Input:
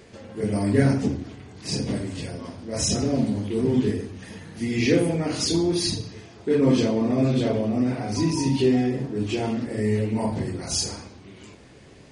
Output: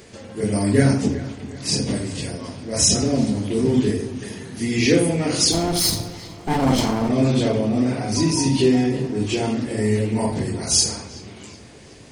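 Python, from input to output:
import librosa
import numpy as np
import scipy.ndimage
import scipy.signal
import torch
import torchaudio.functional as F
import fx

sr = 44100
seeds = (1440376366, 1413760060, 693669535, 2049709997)

y = fx.lower_of_two(x, sr, delay_ms=0.96, at=(5.51, 7.08), fade=0.02)
y = fx.high_shelf(y, sr, hz=5400.0, db=10.0)
y = fx.echo_wet_lowpass(y, sr, ms=376, feedback_pct=45, hz=3500.0, wet_db=-15.0)
y = y * librosa.db_to_amplitude(3.0)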